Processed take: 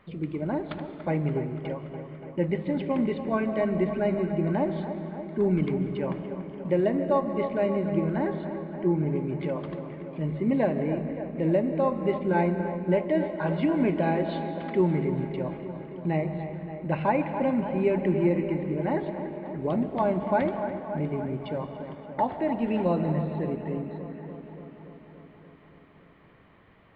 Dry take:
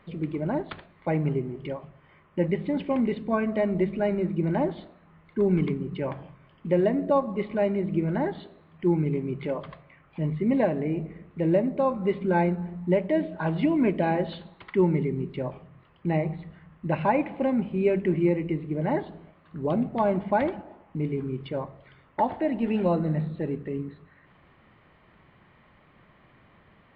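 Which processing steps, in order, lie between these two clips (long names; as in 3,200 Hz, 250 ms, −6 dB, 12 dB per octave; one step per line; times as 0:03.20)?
0:08.33–0:09.16: high-shelf EQ 2,900 Hz −11.5 dB
on a send: delay with a low-pass on its return 287 ms, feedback 71%, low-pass 2,200 Hz, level −10 dB
on the sum: comb and all-pass reverb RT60 2.3 s, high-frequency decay 0.9×, pre-delay 105 ms, DRR 11 dB
level −1.5 dB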